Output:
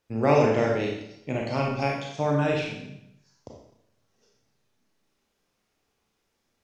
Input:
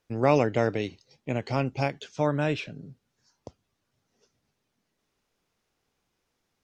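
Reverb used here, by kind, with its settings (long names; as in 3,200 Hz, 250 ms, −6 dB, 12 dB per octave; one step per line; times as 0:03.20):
four-comb reverb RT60 0.77 s, combs from 28 ms, DRR −1.5 dB
level −1.5 dB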